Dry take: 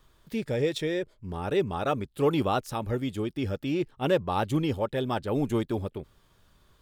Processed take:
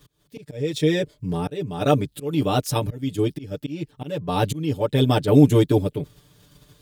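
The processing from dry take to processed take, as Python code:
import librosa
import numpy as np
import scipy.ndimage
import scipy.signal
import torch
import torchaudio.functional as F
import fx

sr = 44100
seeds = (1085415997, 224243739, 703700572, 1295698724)

p1 = fx.level_steps(x, sr, step_db=15)
p2 = x + (p1 * 10.0 ** (0.5 / 20.0))
p3 = fx.peak_eq(p2, sr, hz=1200.0, db=-10.0, octaves=2.1)
p4 = fx.auto_swell(p3, sr, attack_ms=514.0)
p5 = scipy.signal.sosfilt(scipy.signal.butter(2, 60.0, 'highpass', fs=sr, output='sos'), p4)
p6 = p5 + 0.99 * np.pad(p5, (int(6.8 * sr / 1000.0), 0))[:len(p5)]
y = p6 * 10.0 ** (7.0 / 20.0)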